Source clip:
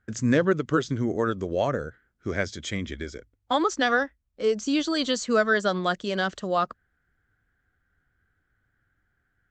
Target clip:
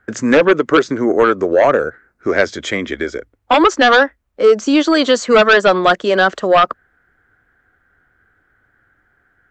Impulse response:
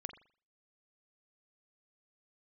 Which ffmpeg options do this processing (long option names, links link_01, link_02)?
-filter_complex "[0:a]asettb=1/sr,asplit=3[link_01][link_02][link_03];[link_01]atrim=end=0.684[link_04];[link_02]atrim=start=0.68:end=2.44,asetpts=PTS-STARTPTS,afade=type=in:duration=0.004:curve=qsin,afade=type=out:start_time=1.756:duration=0.004:curve=qsin,equalizer=frequency=3200:width_type=o:width=0.23:gain=-11[link_05];[link_03]atrim=start=2.436[link_06];[link_04][link_05]acrossfade=duration=0.004:curve1=hsin:curve2=qsin[link_07];[link_07][link_06]acrossfade=duration=0.004:curve1=qsin:curve2=hsin,acrossover=split=290|2200[link_08][link_09][link_10];[link_08]acompressor=threshold=-41dB:ratio=6[link_11];[link_09]aeval=exprs='0.266*sin(PI/2*2.24*val(0)/0.266)':channel_layout=same[link_12];[link_11][link_12][link_10]amix=inputs=3:normalize=0,volume=6.5dB"